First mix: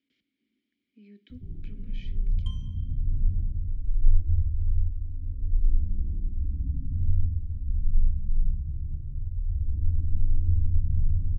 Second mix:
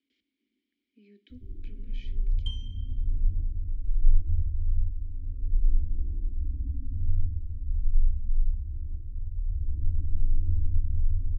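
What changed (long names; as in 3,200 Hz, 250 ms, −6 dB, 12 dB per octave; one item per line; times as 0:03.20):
second sound: add parametric band 3,000 Hz +9.5 dB 0.94 octaves
master: add phaser with its sweep stopped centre 360 Hz, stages 4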